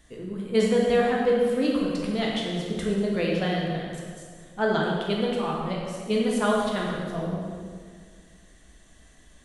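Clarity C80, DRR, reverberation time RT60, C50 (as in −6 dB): 2.0 dB, −3.5 dB, 1.9 s, 0.0 dB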